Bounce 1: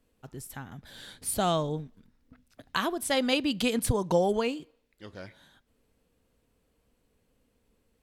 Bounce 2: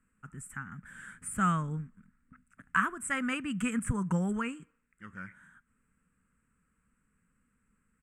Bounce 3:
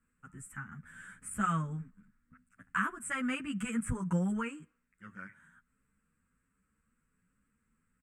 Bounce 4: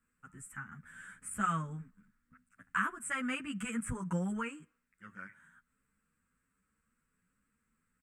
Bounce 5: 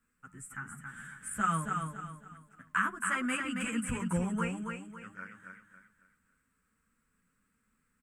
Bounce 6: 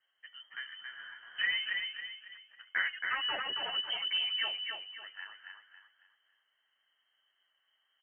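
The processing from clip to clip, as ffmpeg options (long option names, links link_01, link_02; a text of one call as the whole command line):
ffmpeg -i in.wav -af "deesser=0.55,firequalizer=gain_entry='entry(120,0);entry(180,9);entry(320,-7);entry(680,-15);entry(1300,13);entry(2700,-2);entry(4000,-29);entry(8000,9);entry(12000,-12)':delay=0.05:min_phase=1,volume=-4.5dB" out.wav
ffmpeg -i in.wav -filter_complex "[0:a]asplit=2[link_01][link_02];[link_02]adelay=10.1,afreqshift=1.3[link_03];[link_01][link_03]amix=inputs=2:normalize=1" out.wav
ffmpeg -i in.wav -af "lowshelf=frequency=320:gain=-5" out.wav
ffmpeg -i in.wav -filter_complex "[0:a]bandreject=frequency=50:width_type=h:width=6,bandreject=frequency=100:width_type=h:width=6,bandreject=frequency=150:width_type=h:width=6,bandreject=frequency=200:width_type=h:width=6,asplit=2[link_01][link_02];[link_02]aecho=0:1:275|550|825|1100:0.562|0.191|0.065|0.0221[link_03];[link_01][link_03]amix=inputs=2:normalize=0,volume=2.5dB" out.wav
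ffmpeg -i in.wav -filter_complex "[0:a]asplit=2[link_01][link_02];[link_02]asoftclip=type=tanh:threshold=-33dB,volume=-6.5dB[link_03];[link_01][link_03]amix=inputs=2:normalize=0,lowpass=frequency=2700:width_type=q:width=0.5098,lowpass=frequency=2700:width_type=q:width=0.6013,lowpass=frequency=2700:width_type=q:width=0.9,lowpass=frequency=2700:width_type=q:width=2.563,afreqshift=-3200,volume=-3.5dB" out.wav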